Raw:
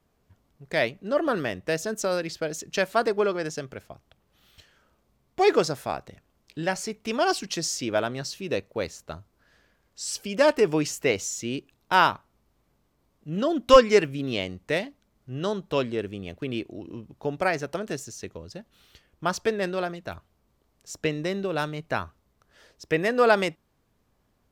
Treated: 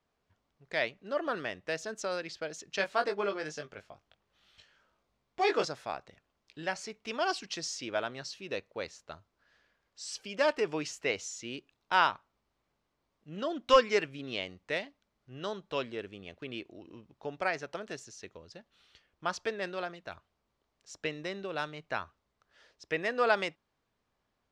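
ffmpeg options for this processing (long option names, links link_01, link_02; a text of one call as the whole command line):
ffmpeg -i in.wav -filter_complex "[0:a]asettb=1/sr,asplit=3[link_01][link_02][link_03];[link_01]atrim=end=2.774[link_04];[link_02]atrim=start=2.77:end=5.65,asetpts=PTS-STARTPTS,afade=type=in:duration=0.004:curve=qsin,afade=type=out:start_time=2.876:duration=0.004:curve=qsin,asplit=2[link_05][link_06];[link_06]adelay=20,volume=-5.5dB[link_07];[link_05][link_07]amix=inputs=2:normalize=0,atrim=end_sample=127008[link_08];[link_03]atrim=start=5.646[link_09];[link_04][link_08]acrossfade=duration=0.004:curve1=hsin:curve2=qsin[link_10];[link_10][link_09]acrossfade=duration=0.004:curve1=qsin:curve2=hsin,lowpass=5500,lowshelf=frequency=440:gain=-10.5,volume=-4.5dB" out.wav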